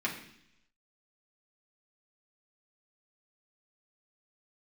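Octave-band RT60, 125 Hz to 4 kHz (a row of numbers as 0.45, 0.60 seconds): 0.90, 0.90, 0.75, 0.70, 0.90, 0.95 seconds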